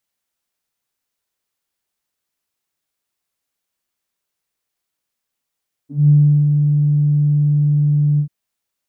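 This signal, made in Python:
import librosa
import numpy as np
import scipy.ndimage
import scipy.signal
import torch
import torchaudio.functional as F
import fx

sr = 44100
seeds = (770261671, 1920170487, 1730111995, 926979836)

y = fx.sub_voice(sr, note=50, wave='saw', cutoff_hz=160.0, q=8.1, env_oct=1.0, env_s=0.09, attack_ms=198.0, decay_s=0.37, sustain_db=-5, release_s=0.09, note_s=2.3, slope=12)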